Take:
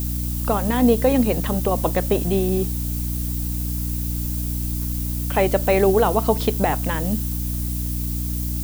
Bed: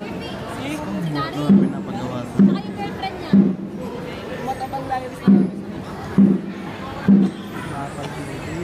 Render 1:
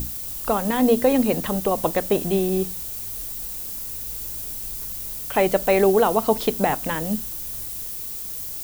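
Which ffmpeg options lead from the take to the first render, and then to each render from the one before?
-af "bandreject=f=60:t=h:w=6,bandreject=f=120:t=h:w=6,bandreject=f=180:t=h:w=6,bandreject=f=240:t=h:w=6,bandreject=f=300:t=h:w=6"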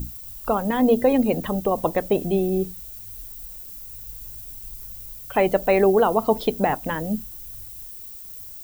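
-af "afftdn=nr=11:nf=-32"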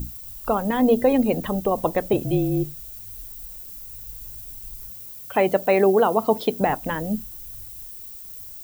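-filter_complex "[0:a]asettb=1/sr,asplit=3[a][b][c];[a]atrim=end=2.134[d];[b]atrim=start=2.13:end=2.81,asetpts=PTS-STARTPTS,afade=t=in:d=0.004:c=qsin,afade=t=out:st=0.676:d=0.004:c=qsin,afreqshift=-36[e];[c]atrim=start=2.806[f];[d][e]acrossfade=d=0.004:c1=hsin:c2=qsin[g];[g][f]acrossfade=d=0.004:c1=qsin:c2=hsin,asettb=1/sr,asplit=3[h][i][j];[h]atrim=end=4.904[k];[i]atrim=start=4.9:end=6.61,asetpts=PTS-STARTPTS,afade=t=in:d=0.004:c=qsin,afade=t=out:st=1.706:d=0.004:c=qsin,highpass=120[l];[j]atrim=start=6.606[m];[k][l]acrossfade=d=0.004:c1=hsin:c2=qsin[n];[n][m]acrossfade=d=0.004:c1=qsin:c2=hsin"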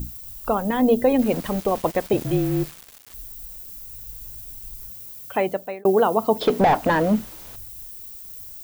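-filter_complex "[0:a]asettb=1/sr,asplit=3[a][b][c];[a]atrim=end=1.194[d];[b]atrim=start=1.19:end=3.14,asetpts=PTS-STARTPTS,afade=t=in:d=0.004:c=qsin,afade=t=out:st=1.946:d=0.004:c=qsin,aeval=exprs='val(0)*gte(abs(val(0)),0.0282)':c=same[e];[c]atrim=start=3.136[f];[d][e]acrossfade=d=0.004:c1=hsin:c2=qsin[g];[g][f]acrossfade=d=0.004:c1=qsin:c2=hsin,asettb=1/sr,asplit=3[h][i][j];[h]atrim=end=6.414[k];[i]atrim=start=6.41:end=7.56,asetpts=PTS-STARTPTS,afade=t=in:d=0.004:c=qsin,afade=t=out:st=1.146:d=0.004:c=qsin,asplit=2[l][m];[m]highpass=f=720:p=1,volume=26dB,asoftclip=type=tanh:threshold=-7dB[n];[l][n]amix=inputs=2:normalize=0,lowpass=f=1.1k:p=1,volume=-6dB[o];[j]atrim=start=7.556[p];[k][o]acrossfade=d=0.004:c1=hsin:c2=qsin[q];[q][p]acrossfade=d=0.004:c1=qsin:c2=hsin,asplit=2[r][s];[r]atrim=end=5.85,asetpts=PTS-STARTPTS,afade=t=out:st=5.25:d=0.6[t];[s]atrim=start=5.85,asetpts=PTS-STARTPTS,afade=t=in:d=0.004:c=hsin[u];[t][u]concat=n=2:v=0:a=1"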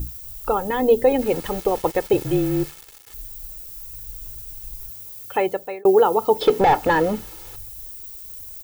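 -af "aecho=1:1:2.3:0.6"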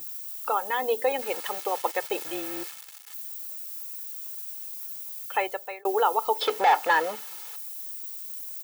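-af "highpass=830"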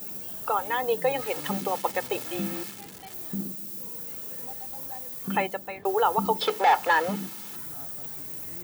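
-filter_complex "[1:a]volume=-20dB[a];[0:a][a]amix=inputs=2:normalize=0"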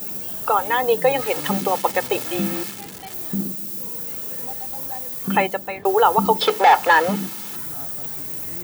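-af "volume=7.5dB,alimiter=limit=-3dB:level=0:latency=1"

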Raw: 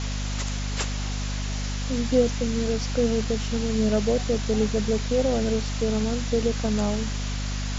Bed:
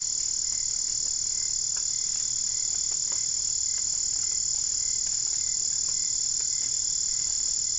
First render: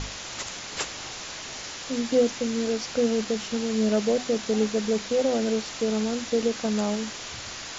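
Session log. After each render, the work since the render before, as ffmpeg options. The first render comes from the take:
-af "bandreject=f=50:t=h:w=6,bandreject=f=100:t=h:w=6,bandreject=f=150:t=h:w=6,bandreject=f=200:t=h:w=6,bandreject=f=250:t=h:w=6"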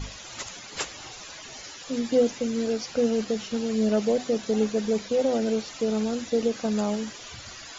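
-af "afftdn=nr=13:nf=-38"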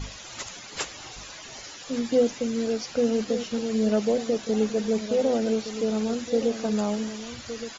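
-filter_complex "[0:a]asplit=2[a][b];[b]adelay=1166,volume=-11dB,highshelf=f=4k:g=-26.2[c];[a][c]amix=inputs=2:normalize=0"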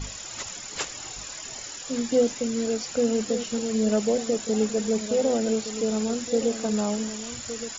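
-filter_complex "[1:a]volume=-12dB[a];[0:a][a]amix=inputs=2:normalize=0"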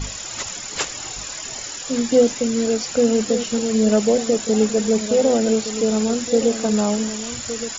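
-af "volume=6.5dB"

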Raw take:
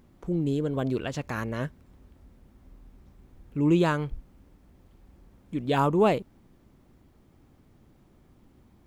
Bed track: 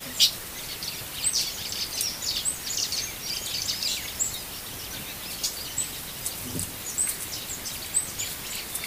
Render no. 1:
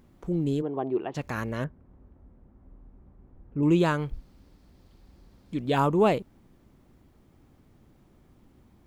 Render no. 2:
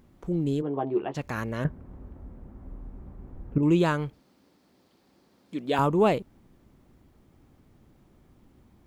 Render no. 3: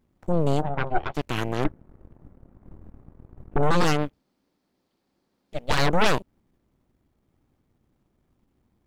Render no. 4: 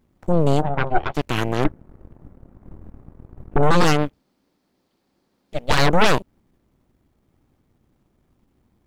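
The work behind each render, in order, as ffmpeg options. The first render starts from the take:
-filter_complex "[0:a]asplit=3[a][b][c];[a]afade=t=out:st=0.61:d=0.02[d];[b]highpass=240,equalizer=f=250:t=q:w=4:g=-4,equalizer=f=360:t=q:w=4:g=7,equalizer=f=530:t=q:w=4:g=-8,equalizer=f=800:t=q:w=4:g=9,equalizer=f=1.5k:t=q:w=4:g=-10,equalizer=f=2.2k:t=q:w=4:g=-7,lowpass=f=2.3k:w=0.5412,lowpass=f=2.3k:w=1.3066,afade=t=in:st=0.61:d=0.02,afade=t=out:st=1.14:d=0.02[e];[c]afade=t=in:st=1.14:d=0.02[f];[d][e][f]amix=inputs=3:normalize=0,asettb=1/sr,asplit=3[g][h][i];[g]atrim=end=1.644[j];[h]atrim=start=1.64:end=3.63,asetpts=PTS-STARTPTS,afade=t=in:d=0.004:c=qsin,afade=t=out:st=1.986:d=0.004:c=qsin,lowpass=1.2k[k];[i]atrim=start=3.626[l];[j][k]acrossfade=d=0.004:c1=hsin:c2=qsin[m];[m][l]acrossfade=d=0.004:c1=qsin:c2=hsin,asettb=1/sr,asplit=3[n][o][p];[n]atrim=end=4.134[q];[o]atrim=start=4.13:end=5.6,asetpts=PTS-STARTPTS,afade=t=in:d=0.004:c=qsin,afade=t=out:st=1.466:d=0.004:c=qsin,equalizer=f=4.5k:t=o:w=0.69:g=10[r];[p]atrim=start=5.596[s];[q][r]acrossfade=d=0.004:c1=hsin:c2=qsin[t];[t][s]acrossfade=d=0.004:c1=qsin:c2=hsin"
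-filter_complex "[0:a]asettb=1/sr,asplit=3[a][b][c];[a]atrim=end=0.624[d];[b]atrim=start=0.62:end=1.15,asetpts=PTS-STARTPTS,afade=t=in:d=0.004:c=qsin,afade=t=out:st=0.526:d=0.004:c=qsin,asplit=2[e][f];[f]adelay=14,volume=-5.5dB[g];[e][g]amix=inputs=2:normalize=0,atrim=end_sample=23373[h];[c]atrim=start=1.146[i];[d][h]acrossfade=d=0.004:c1=hsin:c2=qsin[j];[j][i]acrossfade=d=0.004:c1=qsin:c2=hsin,asettb=1/sr,asplit=3[k][l][m];[k]atrim=end=4.104[n];[l]atrim=start=4.1:end=5.79,asetpts=PTS-STARTPTS,afade=t=in:d=0.004:c=qsin,afade=t=out:st=1.686:d=0.004:c=qsin,highpass=240[o];[m]atrim=start=5.786[p];[n][o]acrossfade=d=0.004:c1=hsin:c2=qsin[q];[q][p]acrossfade=d=0.004:c1=qsin:c2=hsin,asplit=3[r][s][t];[r]atrim=end=1.652[u];[s]atrim=start=1.648:end=3.582,asetpts=PTS-STARTPTS,volume=10dB[v];[t]atrim=start=3.578[w];[u][v]acrossfade=d=0.004:c1=hsin:c2=hsin[x];[x][w]acrossfade=d=0.004:c1=hsin:c2=hsin"
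-af "aeval=exprs='0.316*(cos(1*acos(clip(val(0)/0.316,-1,1)))-cos(1*PI/2))+0.0891*(cos(3*acos(clip(val(0)/0.316,-1,1)))-cos(3*PI/2))+0.00891*(cos(5*acos(clip(val(0)/0.316,-1,1)))-cos(5*PI/2))+0.112*(cos(8*acos(clip(val(0)/0.316,-1,1)))-cos(8*PI/2))':c=same"
-af "volume=5dB,alimiter=limit=-2dB:level=0:latency=1"

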